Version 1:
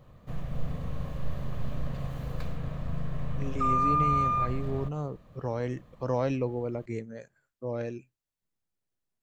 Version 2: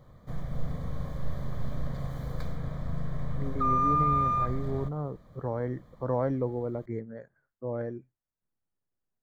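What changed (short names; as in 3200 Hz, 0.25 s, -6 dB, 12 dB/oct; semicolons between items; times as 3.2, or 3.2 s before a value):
speech: add polynomial smoothing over 41 samples; master: add Butterworth band-stop 2700 Hz, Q 3.3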